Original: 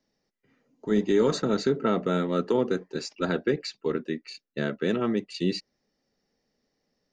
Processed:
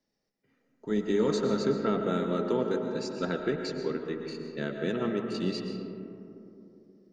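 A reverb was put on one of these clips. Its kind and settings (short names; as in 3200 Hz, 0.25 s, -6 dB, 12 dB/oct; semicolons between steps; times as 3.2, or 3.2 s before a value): digital reverb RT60 3.1 s, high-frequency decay 0.3×, pre-delay 80 ms, DRR 4 dB; gain -5 dB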